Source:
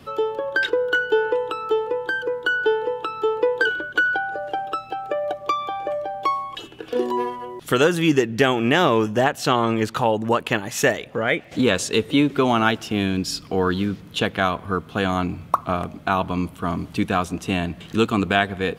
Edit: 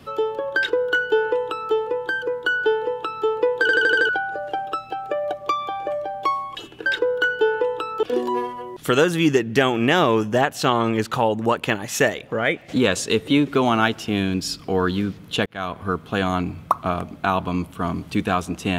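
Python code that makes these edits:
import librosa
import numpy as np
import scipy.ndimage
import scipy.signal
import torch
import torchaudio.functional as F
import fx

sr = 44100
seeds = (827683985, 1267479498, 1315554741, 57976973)

y = fx.edit(x, sr, fx.duplicate(start_s=0.57, length_s=1.17, to_s=6.86),
    fx.stutter_over(start_s=3.61, slice_s=0.08, count=6),
    fx.fade_in_span(start_s=14.29, length_s=0.38), tone=tone)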